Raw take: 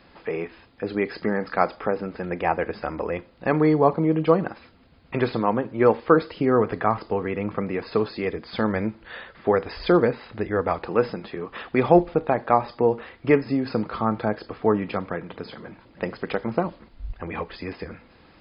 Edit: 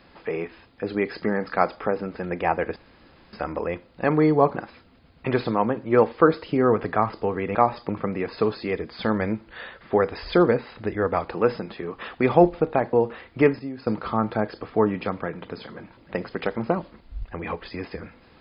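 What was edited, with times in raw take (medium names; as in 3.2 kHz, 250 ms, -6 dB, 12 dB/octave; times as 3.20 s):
2.76 s: insert room tone 0.57 s
3.98–4.43 s: delete
12.47–12.81 s: move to 7.43 s
13.47–13.75 s: gain -9.5 dB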